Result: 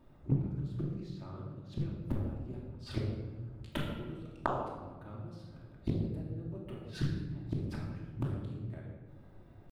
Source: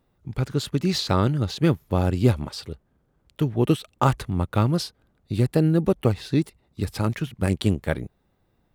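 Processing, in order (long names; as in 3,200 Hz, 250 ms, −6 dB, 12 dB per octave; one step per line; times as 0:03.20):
high-shelf EQ 2,200 Hz −9.5 dB
gate with flip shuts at −25 dBFS, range −35 dB
tempo change 0.9×
rectangular room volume 970 cubic metres, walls mixed, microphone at 2.7 metres
highs frequency-modulated by the lows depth 0.64 ms
level +4 dB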